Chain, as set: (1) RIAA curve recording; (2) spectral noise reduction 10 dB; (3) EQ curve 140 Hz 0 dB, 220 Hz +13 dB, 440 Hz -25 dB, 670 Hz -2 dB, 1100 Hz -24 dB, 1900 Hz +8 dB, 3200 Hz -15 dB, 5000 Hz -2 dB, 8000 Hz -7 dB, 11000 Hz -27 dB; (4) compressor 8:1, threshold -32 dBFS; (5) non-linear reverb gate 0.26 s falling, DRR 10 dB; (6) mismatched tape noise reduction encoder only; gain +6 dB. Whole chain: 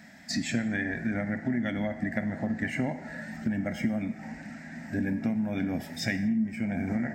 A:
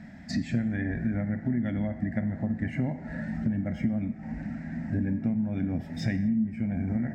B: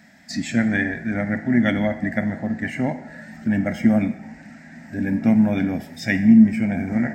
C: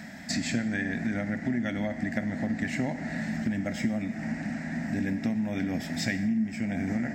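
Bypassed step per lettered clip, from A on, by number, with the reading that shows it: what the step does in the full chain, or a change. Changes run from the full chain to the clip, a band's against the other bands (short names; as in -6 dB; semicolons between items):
1, 125 Hz band +9.0 dB; 4, mean gain reduction 6.0 dB; 2, momentary loudness spread change -3 LU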